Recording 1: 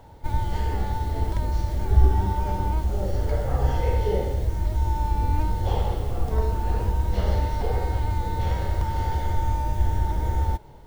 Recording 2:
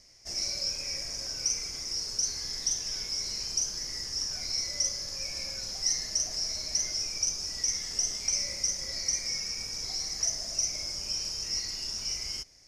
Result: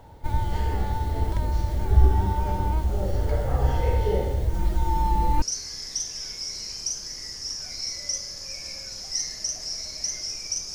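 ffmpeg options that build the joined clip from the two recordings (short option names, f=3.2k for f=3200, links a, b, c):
-filter_complex "[0:a]asettb=1/sr,asplit=3[a][b][c];[a]atrim=end=4.534[d];[b]atrim=start=4.53:end=5.42,asetpts=PTS-STARTPTS,afade=t=in:d=0.004:c=qsin,afade=t=out:st=0.886:d=0.004:c=qsin,aecho=1:1:5.8:0.88,atrim=end_sample=39249[e];[c]atrim=start=5.416[f];[d][e]acrossfade=d=0.004:c1=hsin:c2=qsin[g];[g][f]acrossfade=d=0.004:c1=qsin:c2=hsin,apad=whole_dur=10.74,atrim=end=10.74,atrim=end=5.422[h];[1:a]atrim=start=2.128:end=7.45[i];[h][i]acrossfade=d=0.004:c1=hsin:c2=hsin"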